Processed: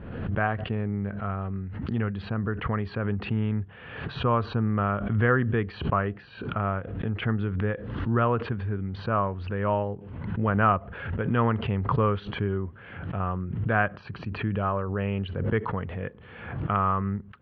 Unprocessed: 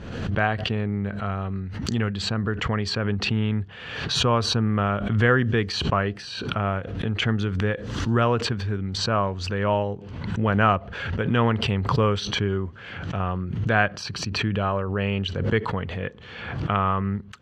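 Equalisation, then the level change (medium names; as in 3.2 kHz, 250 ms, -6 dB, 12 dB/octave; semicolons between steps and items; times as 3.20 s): low-pass 3 kHz 12 dB/octave; dynamic bell 1.2 kHz, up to +4 dB, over -34 dBFS; distance through air 360 m; -2.5 dB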